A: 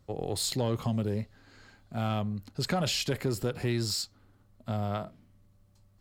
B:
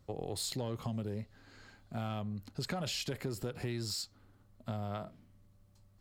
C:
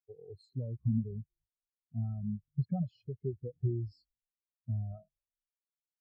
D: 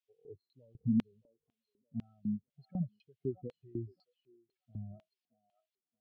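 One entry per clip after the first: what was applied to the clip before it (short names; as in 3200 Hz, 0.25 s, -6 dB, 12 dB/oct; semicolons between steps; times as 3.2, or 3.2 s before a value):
compressor 2.5:1, threshold -35 dBFS, peak gain reduction 7.5 dB; gain -1.5 dB
frequency-shifting echo 0.229 s, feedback 50%, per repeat -64 Hz, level -14.5 dB; spectral expander 4:1
delay with a stepping band-pass 0.621 s, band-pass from 1000 Hz, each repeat 0.7 oct, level -6.5 dB; LFO band-pass square 2 Hz 270–3000 Hz; gain +7 dB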